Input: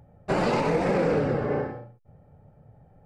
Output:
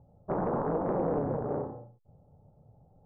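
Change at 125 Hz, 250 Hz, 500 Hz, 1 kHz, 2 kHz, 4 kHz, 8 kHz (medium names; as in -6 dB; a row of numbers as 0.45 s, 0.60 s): -6.5 dB, -5.5 dB, -6.0 dB, -5.0 dB, -17.5 dB, under -40 dB, no reading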